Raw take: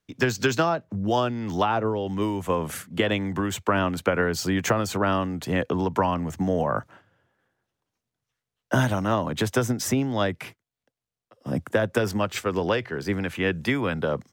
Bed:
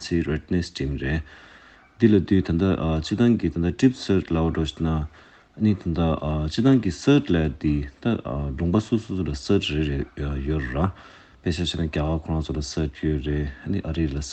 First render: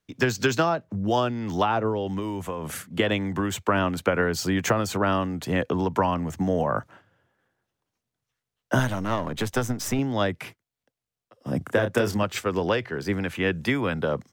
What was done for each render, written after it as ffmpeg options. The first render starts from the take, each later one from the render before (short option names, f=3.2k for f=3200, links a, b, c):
-filter_complex "[0:a]asettb=1/sr,asplit=3[a][b][c];[a]atrim=end=2.194[d];[b]atrim=start=2.19:end=2.81,asetpts=PTS-STARTPTS,afade=t=in:d=0.004:c=qsin,afade=t=out:st=0.616:d=0.004:c=qsin,acompressor=threshold=-26dB:ratio=6:attack=3.2:release=140:knee=1:detection=peak[e];[c]atrim=start=2.806[f];[d][e]acrossfade=d=0.004:c1=hsin:c2=qsin[g];[g][f]acrossfade=d=0.004:c1=qsin:c2=hsin,asettb=1/sr,asplit=3[h][i][j];[h]atrim=end=8.794[k];[i]atrim=start=8.79:end=9.99,asetpts=PTS-STARTPTS,afade=t=in:d=0.004:c=qsin,afade=t=out:st=1.196:d=0.004:c=qsin,aeval=exprs='if(lt(val(0),0),0.447*val(0),val(0))':c=same[l];[j]atrim=start=9.986[m];[k][l]acrossfade=d=0.004:c1=hsin:c2=qsin[n];[n][m]acrossfade=d=0.004:c1=qsin:c2=hsin,asettb=1/sr,asplit=3[o][p][q];[o]atrim=end=11.584[r];[p]atrim=start=11.58:end=12.23,asetpts=PTS-STARTPTS,afade=t=in:d=0.004:c=qsin,afade=t=out:st=0.646:d=0.004:c=qsin,asplit=2[s][t];[t]adelay=30,volume=-7dB[u];[s][u]amix=inputs=2:normalize=0,atrim=end_sample=28665[v];[q]atrim=start=12.226[w];[r][v]acrossfade=d=0.004:c1=hsin:c2=qsin[x];[x][w]acrossfade=d=0.004:c1=qsin:c2=hsin"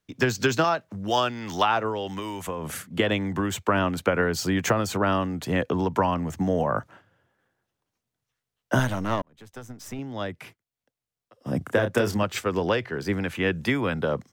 -filter_complex "[0:a]asettb=1/sr,asplit=3[a][b][c];[a]atrim=end=0.644[d];[b]atrim=start=0.64:end=2.47,asetpts=PTS-STARTPTS,afade=t=in:d=0.004:c=qsin,afade=t=out:st=1.826:d=0.004:c=qsin,tiltshelf=f=720:g=-6.5[e];[c]atrim=start=2.466[f];[d][e]acrossfade=d=0.004:c1=hsin:c2=qsin[g];[g][f]acrossfade=d=0.004:c1=qsin:c2=hsin,asplit=2[h][i];[h]atrim=end=9.22,asetpts=PTS-STARTPTS,afade=t=out:st=9.216:d=0.004:c=hsin[j];[i]atrim=start=9.22,asetpts=PTS-STARTPTS,afade=t=in:d=2.28[k];[j][k]concat=n=2:v=0:a=1"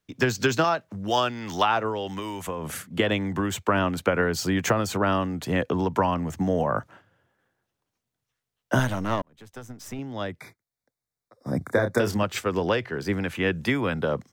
-filter_complex "[0:a]asettb=1/sr,asplit=3[a][b][c];[a]atrim=end=10.404[d];[b]atrim=start=10.4:end=12,asetpts=PTS-STARTPTS,afade=t=in:d=0.004:c=qsin,afade=t=out:st=1.596:d=0.004:c=qsin,asuperstop=centerf=2900:order=20:qfactor=2.7[e];[c]atrim=start=11.996[f];[d][e]acrossfade=d=0.004:c1=hsin:c2=qsin[g];[g][f]acrossfade=d=0.004:c1=qsin:c2=hsin"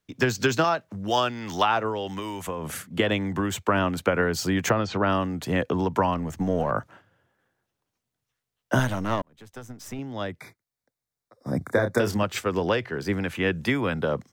-filter_complex "[0:a]asettb=1/sr,asplit=3[a][b][c];[a]atrim=end=4.694[d];[b]atrim=start=4.69:end=5.1,asetpts=PTS-STARTPTS,afade=t=in:d=0.004:c=qsin,afade=t=out:st=0.406:d=0.004:c=qsin,lowpass=f=5k:w=0.5412,lowpass=f=5k:w=1.3066[e];[c]atrim=start=5.096[f];[d][e]acrossfade=d=0.004:c1=hsin:c2=qsin[g];[g][f]acrossfade=d=0.004:c1=qsin:c2=hsin,asplit=3[h][i][j];[h]afade=t=out:st=6.12:d=0.02[k];[i]aeval=exprs='if(lt(val(0),0),0.708*val(0),val(0))':c=same,afade=t=in:st=6.12:d=0.02,afade=t=out:st=6.7:d=0.02[l];[j]afade=t=in:st=6.7:d=0.02[m];[k][l][m]amix=inputs=3:normalize=0"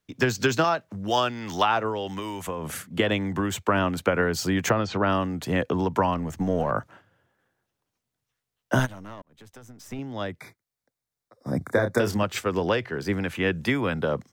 -filter_complex "[0:a]asplit=3[a][b][c];[a]afade=t=out:st=8.85:d=0.02[d];[b]acompressor=threshold=-44dB:ratio=2.5:attack=3.2:release=140:knee=1:detection=peak,afade=t=in:st=8.85:d=0.02,afade=t=out:st=9.9:d=0.02[e];[c]afade=t=in:st=9.9:d=0.02[f];[d][e][f]amix=inputs=3:normalize=0"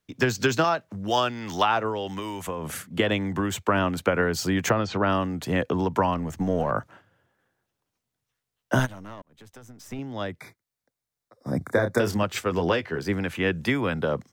-filter_complex "[0:a]asettb=1/sr,asplit=3[a][b][c];[a]atrim=end=12.494[d];[b]atrim=start=12.49:end=12.99,asetpts=PTS-STARTPTS,afade=t=in:d=0.004:c=qsin,afade=t=out:st=0.496:d=0.004:c=qsin,asplit=2[e][f];[f]adelay=12,volume=-7dB[g];[e][g]amix=inputs=2:normalize=0,atrim=end_sample=22050[h];[c]atrim=start=12.986[i];[d][h]acrossfade=d=0.004:c1=hsin:c2=qsin[j];[j][i]acrossfade=d=0.004:c1=qsin:c2=hsin"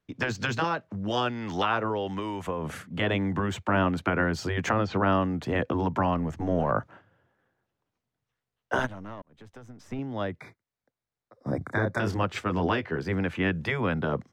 -af "aemphasis=mode=reproduction:type=75fm,afftfilt=real='re*lt(hypot(re,im),0.447)':imag='im*lt(hypot(re,im),0.447)':win_size=1024:overlap=0.75"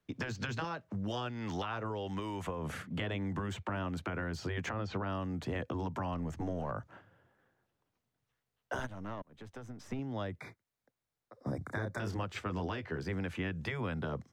-filter_complex "[0:a]alimiter=limit=-15dB:level=0:latency=1:release=181,acrossover=split=110|4600[a][b][c];[a]acompressor=threshold=-42dB:ratio=4[d];[b]acompressor=threshold=-37dB:ratio=4[e];[c]acompressor=threshold=-55dB:ratio=4[f];[d][e][f]amix=inputs=3:normalize=0"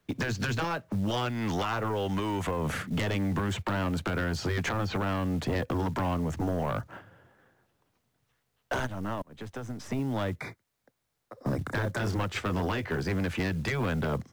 -af "aeval=exprs='0.0841*(cos(1*acos(clip(val(0)/0.0841,-1,1)))-cos(1*PI/2))+0.00668*(cos(4*acos(clip(val(0)/0.0841,-1,1)))-cos(4*PI/2))+0.0335*(cos(5*acos(clip(val(0)/0.0841,-1,1)))-cos(5*PI/2))+0.00422*(cos(6*acos(clip(val(0)/0.0841,-1,1)))-cos(6*PI/2))+0.00596*(cos(8*acos(clip(val(0)/0.0841,-1,1)))-cos(8*PI/2))':c=same,acrusher=bits=7:mode=log:mix=0:aa=0.000001"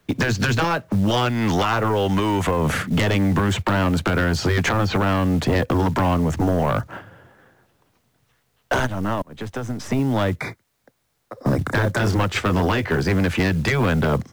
-af "volume=10dB"